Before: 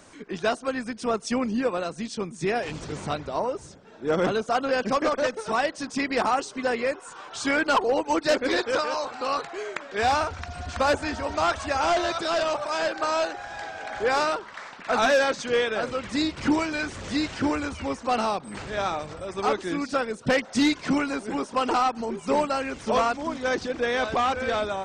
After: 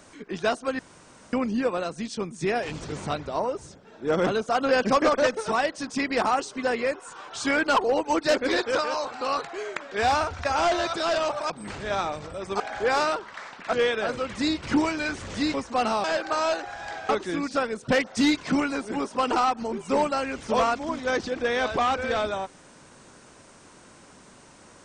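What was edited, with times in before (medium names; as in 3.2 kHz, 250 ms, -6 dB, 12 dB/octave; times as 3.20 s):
0.79–1.33 s: room tone
4.61–5.51 s: gain +3 dB
10.45–11.70 s: delete
12.75–13.80 s: swap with 18.37–19.47 s
14.93–15.47 s: delete
17.28–17.87 s: delete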